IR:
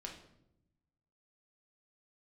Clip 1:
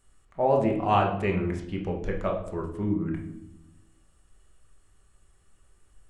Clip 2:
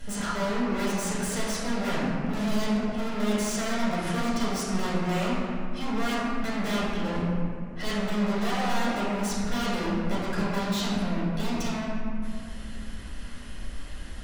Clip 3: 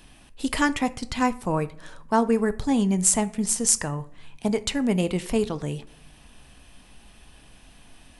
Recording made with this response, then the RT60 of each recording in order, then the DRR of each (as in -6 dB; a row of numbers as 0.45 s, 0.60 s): 1; 0.80 s, 2.3 s, no single decay rate; 0.0 dB, -7.5 dB, 12.0 dB